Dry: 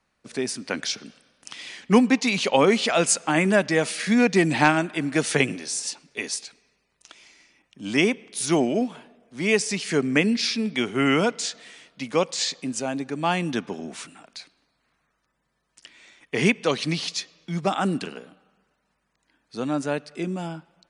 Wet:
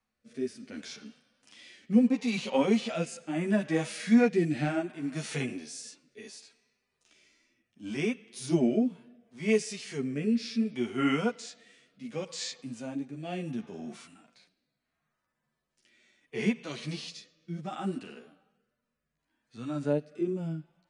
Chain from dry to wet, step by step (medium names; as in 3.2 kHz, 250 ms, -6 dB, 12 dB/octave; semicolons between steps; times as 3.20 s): chorus voices 4, 1.3 Hz, delay 11 ms, depth 3 ms; rotary cabinet horn 0.7 Hz; harmonic-percussive split percussive -17 dB